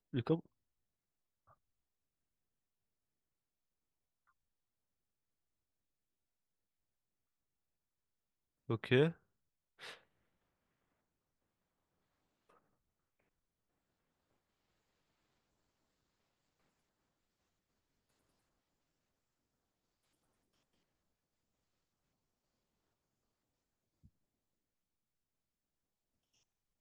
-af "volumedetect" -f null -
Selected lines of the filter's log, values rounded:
mean_volume: -48.7 dB
max_volume: -17.0 dB